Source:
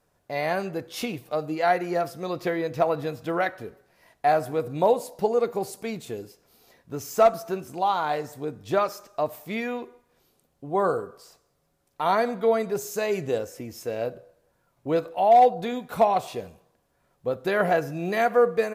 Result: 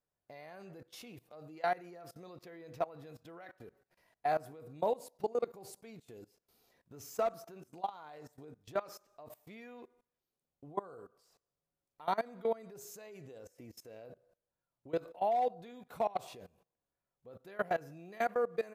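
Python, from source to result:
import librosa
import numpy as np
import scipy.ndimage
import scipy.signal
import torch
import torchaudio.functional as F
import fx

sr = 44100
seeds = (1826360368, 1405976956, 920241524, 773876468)

y = fx.level_steps(x, sr, step_db=21)
y = F.gain(torch.from_numpy(y), -8.5).numpy()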